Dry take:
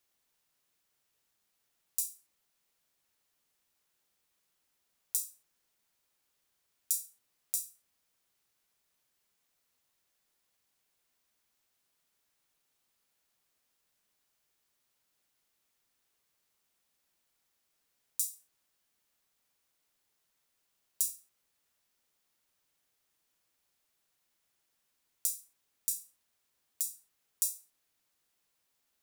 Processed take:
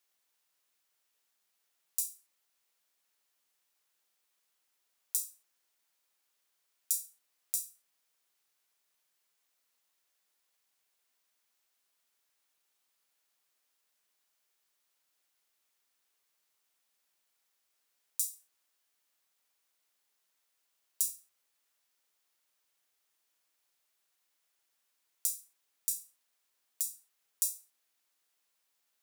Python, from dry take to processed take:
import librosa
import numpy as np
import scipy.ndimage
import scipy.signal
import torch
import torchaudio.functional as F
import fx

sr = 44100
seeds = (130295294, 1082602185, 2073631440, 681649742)

y = fx.highpass(x, sr, hz=550.0, slope=6)